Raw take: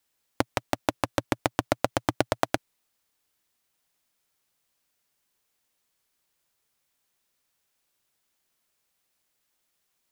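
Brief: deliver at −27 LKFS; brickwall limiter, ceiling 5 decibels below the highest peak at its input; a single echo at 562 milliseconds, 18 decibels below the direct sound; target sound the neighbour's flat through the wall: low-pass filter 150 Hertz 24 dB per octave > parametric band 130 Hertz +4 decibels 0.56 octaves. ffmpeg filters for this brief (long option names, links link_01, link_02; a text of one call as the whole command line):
ffmpeg -i in.wav -af "alimiter=limit=-7.5dB:level=0:latency=1,lowpass=frequency=150:width=0.5412,lowpass=frequency=150:width=1.3066,equalizer=frequency=130:width_type=o:width=0.56:gain=4,aecho=1:1:562:0.126,volume=17dB" out.wav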